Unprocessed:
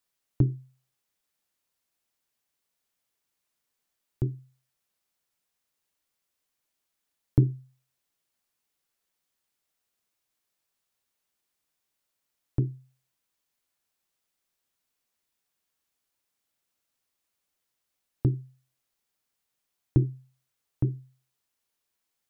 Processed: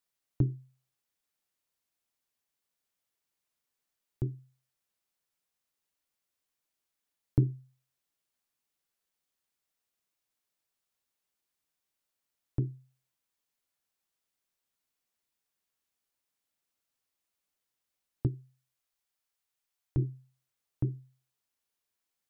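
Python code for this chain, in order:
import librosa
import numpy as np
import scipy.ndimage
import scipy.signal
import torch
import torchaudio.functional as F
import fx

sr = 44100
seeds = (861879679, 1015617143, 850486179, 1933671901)

y = fx.peak_eq(x, sr, hz=210.0, db=-9.5, octaves=1.9, at=(18.27, 19.98))
y = F.gain(torch.from_numpy(y), -4.5).numpy()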